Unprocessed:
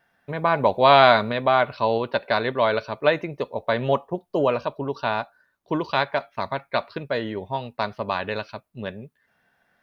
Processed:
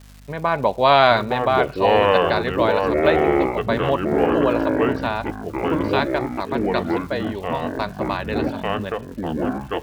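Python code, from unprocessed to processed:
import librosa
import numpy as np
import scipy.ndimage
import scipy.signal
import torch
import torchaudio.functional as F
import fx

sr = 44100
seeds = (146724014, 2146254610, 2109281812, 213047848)

y = fx.echo_pitch(x, sr, ms=717, semitones=-5, count=3, db_per_echo=-3.0)
y = fx.dmg_crackle(y, sr, seeds[0], per_s=400.0, level_db=-37.0)
y = fx.add_hum(y, sr, base_hz=50, snr_db=25)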